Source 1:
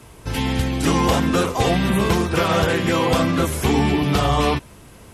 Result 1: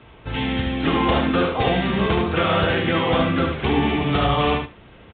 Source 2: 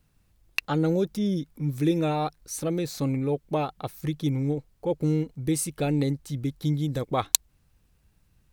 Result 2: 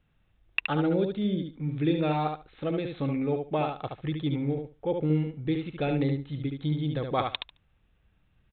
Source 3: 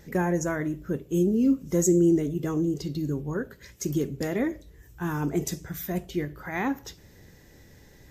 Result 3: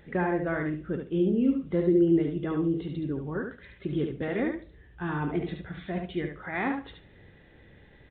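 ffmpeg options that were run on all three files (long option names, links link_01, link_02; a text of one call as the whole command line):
ffmpeg -i in.wav -af "lowshelf=frequency=450:gain=-4,bandreject=frequency=1000:width=16,aecho=1:1:72|144|216:0.562|0.09|0.0144,aresample=8000,aresample=44100" out.wav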